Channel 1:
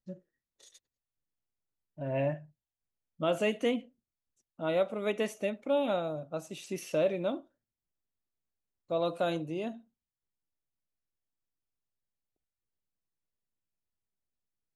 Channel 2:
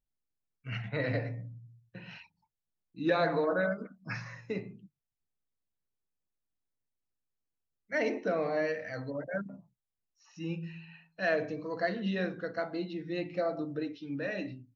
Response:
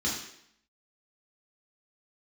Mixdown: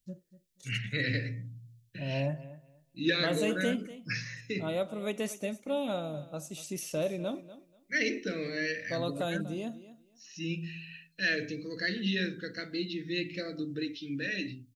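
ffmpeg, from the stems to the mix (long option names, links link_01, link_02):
-filter_complex "[0:a]bass=frequency=250:gain=8,treble=frequency=4000:gain=12,volume=-4.5dB,asplit=2[link_01][link_02];[link_02]volume=-16dB[link_03];[1:a]firequalizer=gain_entry='entry(390,0);entry(790,-26);entry(1700,3);entry(3400,10)':delay=0.05:min_phase=1,volume=1dB[link_04];[link_03]aecho=0:1:242|484|726:1|0.19|0.0361[link_05];[link_01][link_04][link_05]amix=inputs=3:normalize=0"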